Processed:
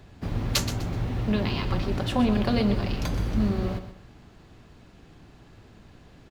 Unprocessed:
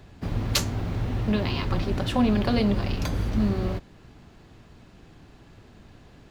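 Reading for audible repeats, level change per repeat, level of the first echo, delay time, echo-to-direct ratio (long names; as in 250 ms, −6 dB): 3, −10.0 dB, −11.0 dB, 125 ms, −10.5 dB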